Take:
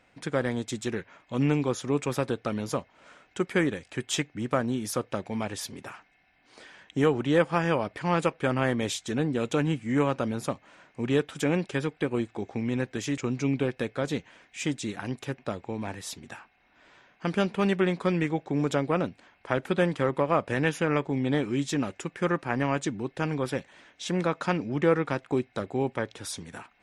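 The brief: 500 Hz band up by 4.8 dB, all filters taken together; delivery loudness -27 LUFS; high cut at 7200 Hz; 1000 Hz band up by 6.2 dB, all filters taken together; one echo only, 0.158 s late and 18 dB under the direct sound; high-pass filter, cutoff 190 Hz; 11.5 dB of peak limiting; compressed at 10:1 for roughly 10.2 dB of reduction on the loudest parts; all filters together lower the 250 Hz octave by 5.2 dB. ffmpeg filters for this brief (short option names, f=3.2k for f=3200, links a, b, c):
-af "highpass=190,lowpass=7.2k,equalizer=f=250:t=o:g=-8.5,equalizer=f=500:t=o:g=6.5,equalizer=f=1k:t=o:g=6.5,acompressor=threshold=-23dB:ratio=10,alimiter=limit=-22dB:level=0:latency=1,aecho=1:1:158:0.126,volume=7.5dB"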